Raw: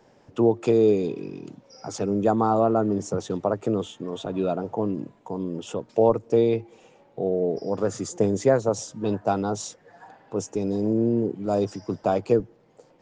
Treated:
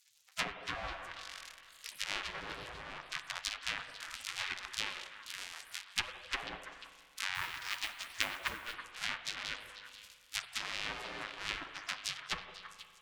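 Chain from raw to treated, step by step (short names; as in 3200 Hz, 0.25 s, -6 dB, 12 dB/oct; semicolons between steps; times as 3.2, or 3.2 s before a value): cycle switcher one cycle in 2, muted; spectral gate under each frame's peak -25 dB weak; treble ducked by the level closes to 940 Hz, closed at -35.5 dBFS; on a send: delay with a stepping band-pass 0.164 s, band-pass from 510 Hz, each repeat 1.4 oct, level -6 dB; on the sum: spring tank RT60 2.2 s, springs 38/46 ms, chirp 80 ms, DRR 9.5 dB; 7.34–8.74 modulation noise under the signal 15 dB; gain +8 dB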